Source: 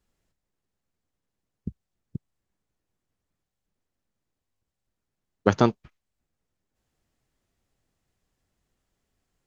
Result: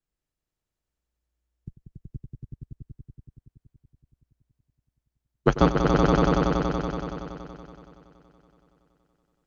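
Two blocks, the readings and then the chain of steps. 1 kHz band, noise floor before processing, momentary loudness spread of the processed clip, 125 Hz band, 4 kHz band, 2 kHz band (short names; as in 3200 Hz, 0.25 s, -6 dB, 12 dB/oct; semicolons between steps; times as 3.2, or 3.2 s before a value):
+6.0 dB, -84 dBFS, 21 LU, +7.0 dB, +6.0 dB, +5.0 dB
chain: swelling echo 94 ms, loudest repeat 5, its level -3 dB; frequency shift -59 Hz; upward expander 1.5:1, over -41 dBFS; gain +1 dB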